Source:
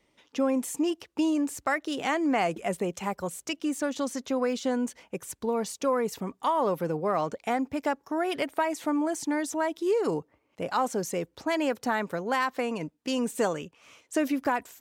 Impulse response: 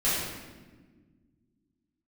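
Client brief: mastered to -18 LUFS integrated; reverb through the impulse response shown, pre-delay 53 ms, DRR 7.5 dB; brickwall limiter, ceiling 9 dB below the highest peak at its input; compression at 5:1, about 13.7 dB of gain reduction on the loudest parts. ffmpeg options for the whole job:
-filter_complex "[0:a]acompressor=threshold=-38dB:ratio=5,alimiter=level_in=8.5dB:limit=-24dB:level=0:latency=1,volume=-8.5dB,asplit=2[a][b];[1:a]atrim=start_sample=2205,adelay=53[c];[b][c]afir=irnorm=-1:irlink=0,volume=-19.5dB[d];[a][d]amix=inputs=2:normalize=0,volume=23.5dB"

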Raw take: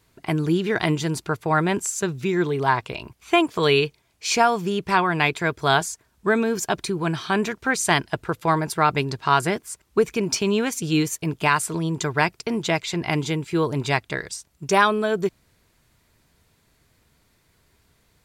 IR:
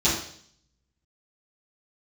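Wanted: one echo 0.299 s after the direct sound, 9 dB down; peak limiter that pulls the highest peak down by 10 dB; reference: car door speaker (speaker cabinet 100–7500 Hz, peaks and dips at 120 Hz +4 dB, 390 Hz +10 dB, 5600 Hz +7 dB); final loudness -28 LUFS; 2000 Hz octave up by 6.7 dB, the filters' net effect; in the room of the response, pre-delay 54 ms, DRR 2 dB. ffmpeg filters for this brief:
-filter_complex "[0:a]equalizer=f=2k:t=o:g=8.5,alimiter=limit=-9.5dB:level=0:latency=1,aecho=1:1:299:0.355,asplit=2[a][b];[1:a]atrim=start_sample=2205,adelay=54[c];[b][c]afir=irnorm=-1:irlink=0,volume=-16.5dB[d];[a][d]amix=inputs=2:normalize=0,highpass=100,equalizer=f=120:t=q:w=4:g=4,equalizer=f=390:t=q:w=4:g=10,equalizer=f=5.6k:t=q:w=4:g=7,lowpass=f=7.5k:w=0.5412,lowpass=f=7.5k:w=1.3066,volume=-12dB"

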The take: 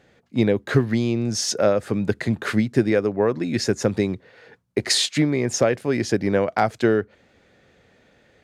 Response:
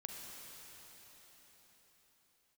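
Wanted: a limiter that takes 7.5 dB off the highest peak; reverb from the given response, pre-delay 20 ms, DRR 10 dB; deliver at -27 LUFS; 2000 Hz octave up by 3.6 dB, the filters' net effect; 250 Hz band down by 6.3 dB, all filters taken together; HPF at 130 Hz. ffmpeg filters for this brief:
-filter_complex "[0:a]highpass=130,equalizer=f=250:t=o:g=-8,equalizer=f=2k:t=o:g=4.5,alimiter=limit=-13dB:level=0:latency=1,asplit=2[a][b];[1:a]atrim=start_sample=2205,adelay=20[c];[b][c]afir=irnorm=-1:irlink=0,volume=-8dB[d];[a][d]amix=inputs=2:normalize=0,volume=-2dB"

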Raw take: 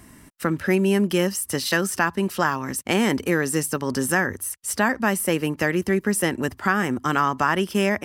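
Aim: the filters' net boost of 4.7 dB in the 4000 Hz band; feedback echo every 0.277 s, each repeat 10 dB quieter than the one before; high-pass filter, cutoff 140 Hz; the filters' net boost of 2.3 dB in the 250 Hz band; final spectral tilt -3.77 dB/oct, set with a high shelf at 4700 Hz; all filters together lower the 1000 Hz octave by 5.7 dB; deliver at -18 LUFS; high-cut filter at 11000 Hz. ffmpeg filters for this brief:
-af "highpass=140,lowpass=11k,equalizer=f=250:t=o:g=4.5,equalizer=f=1k:t=o:g=-8.5,equalizer=f=4k:t=o:g=4.5,highshelf=f=4.7k:g=5.5,aecho=1:1:277|554|831|1108:0.316|0.101|0.0324|0.0104,volume=3.5dB"

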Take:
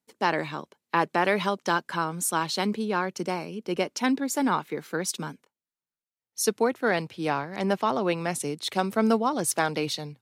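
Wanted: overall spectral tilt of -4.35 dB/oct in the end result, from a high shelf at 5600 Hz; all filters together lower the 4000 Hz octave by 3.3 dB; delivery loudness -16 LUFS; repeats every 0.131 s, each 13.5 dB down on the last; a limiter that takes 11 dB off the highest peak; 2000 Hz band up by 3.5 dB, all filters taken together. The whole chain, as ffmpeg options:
-af "equalizer=f=2k:t=o:g=6,equalizer=f=4k:t=o:g=-3.5,highshelf=f=5.6k:g=-7,alimiter=limit=-19dB:level=0:latency=1,aecho=1:1:131|262:0.211|0.0444,volume=14.5dB"

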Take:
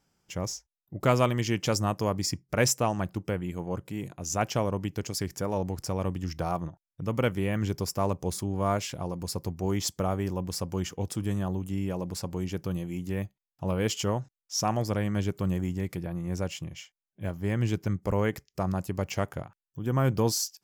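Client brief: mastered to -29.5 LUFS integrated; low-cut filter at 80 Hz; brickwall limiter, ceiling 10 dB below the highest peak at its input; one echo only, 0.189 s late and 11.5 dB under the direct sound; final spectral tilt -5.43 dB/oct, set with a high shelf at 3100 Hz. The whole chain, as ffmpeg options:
-af "highpass=80,highshelf=f=3.1k:g=-3.5,alimiter=limit=-17dB:level=0:latency=1,aecho=1:1:189:0.266,volume=3dB"

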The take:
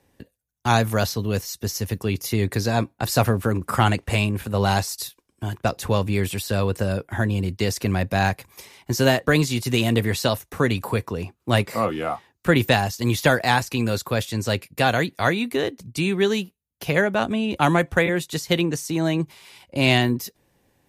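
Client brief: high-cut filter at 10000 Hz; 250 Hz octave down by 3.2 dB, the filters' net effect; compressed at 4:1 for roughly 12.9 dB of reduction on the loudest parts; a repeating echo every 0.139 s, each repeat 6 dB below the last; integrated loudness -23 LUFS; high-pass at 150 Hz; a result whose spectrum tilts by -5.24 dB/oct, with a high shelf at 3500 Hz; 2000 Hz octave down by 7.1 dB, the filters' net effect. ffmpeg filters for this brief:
-af "highpass=150,lowpass=10k,equalizer=f=250:t=o:g=-3,equalizer=f=2k:t=o:g=-7.5,highshelf=f=3.5k:g=-7,acompressor=threshold=-32dB:ratio=4,aecho=1:1:139|278|417|556|695|834:0.501|0.251|0.125|0.0626|0.0313|0.0157,volume=12dB"

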